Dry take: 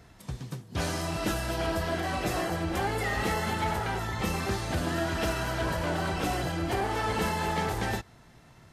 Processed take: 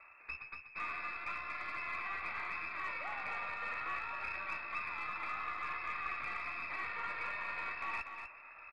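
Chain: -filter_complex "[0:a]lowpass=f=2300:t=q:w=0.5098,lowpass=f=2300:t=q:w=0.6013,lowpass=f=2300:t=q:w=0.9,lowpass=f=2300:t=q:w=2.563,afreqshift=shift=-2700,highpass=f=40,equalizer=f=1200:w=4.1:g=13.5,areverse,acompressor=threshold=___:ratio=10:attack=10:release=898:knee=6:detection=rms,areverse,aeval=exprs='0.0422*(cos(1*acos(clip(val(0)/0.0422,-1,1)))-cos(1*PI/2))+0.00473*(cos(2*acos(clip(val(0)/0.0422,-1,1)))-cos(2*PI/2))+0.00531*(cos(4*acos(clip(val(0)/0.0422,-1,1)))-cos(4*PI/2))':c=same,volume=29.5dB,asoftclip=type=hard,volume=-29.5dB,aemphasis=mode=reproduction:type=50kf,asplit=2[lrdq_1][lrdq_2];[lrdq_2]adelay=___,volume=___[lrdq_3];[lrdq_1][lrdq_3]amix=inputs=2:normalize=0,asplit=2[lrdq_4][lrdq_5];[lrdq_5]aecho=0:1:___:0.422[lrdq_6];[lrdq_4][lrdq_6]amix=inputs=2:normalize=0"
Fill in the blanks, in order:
-35dB, 15, -12dB, 244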